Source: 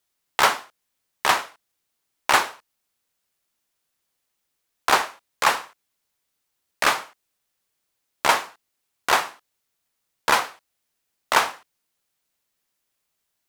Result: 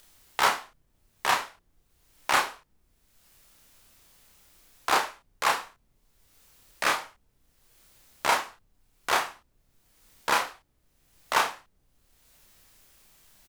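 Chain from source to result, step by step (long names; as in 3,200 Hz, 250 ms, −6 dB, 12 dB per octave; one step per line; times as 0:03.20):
upward compression, threshold −35 dBFS
background noise brown −61 dBFS
double-tracking delay 31 ms −2.5 dB
level −7 dB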